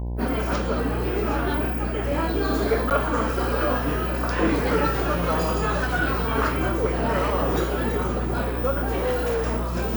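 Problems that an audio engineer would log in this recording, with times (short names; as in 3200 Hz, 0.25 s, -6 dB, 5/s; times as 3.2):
buzz 60 Hz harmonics 17 -28 dBFS
2.9–2.91 gap 9.1 ms
8.9–9.45 clipped -20 dBFS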